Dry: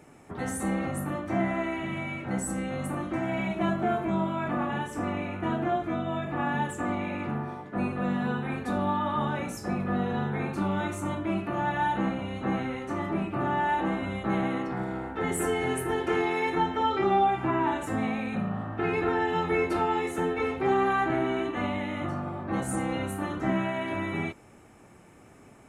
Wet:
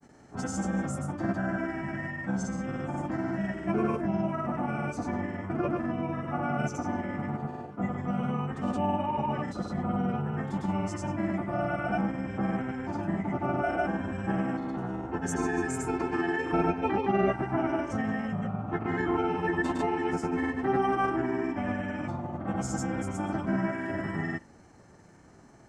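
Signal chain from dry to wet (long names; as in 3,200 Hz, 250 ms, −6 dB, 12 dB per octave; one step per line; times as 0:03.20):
formants moved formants −4 semitones
granular cloud, pitch spread up and down by 0 semitones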